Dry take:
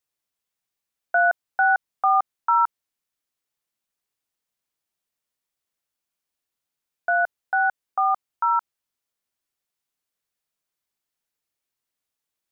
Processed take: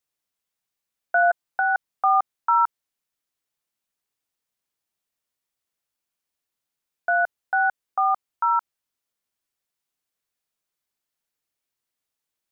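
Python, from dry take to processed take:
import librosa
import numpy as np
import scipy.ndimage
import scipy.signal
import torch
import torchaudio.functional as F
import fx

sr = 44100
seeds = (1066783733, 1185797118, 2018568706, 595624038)

y = fx.comb(x, sr, ms=5.8, depth=0.34, at=(1.22, 1.75))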